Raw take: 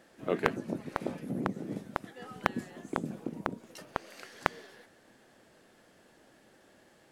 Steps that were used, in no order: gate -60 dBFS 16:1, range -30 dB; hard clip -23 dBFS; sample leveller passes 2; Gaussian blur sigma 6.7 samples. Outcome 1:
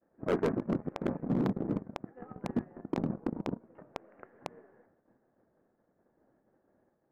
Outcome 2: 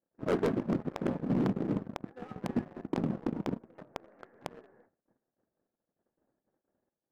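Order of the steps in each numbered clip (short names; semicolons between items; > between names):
gate > sample leveller > Gaussian blur > hard clip; Gaussian blur > gate > sample leveller > hard clip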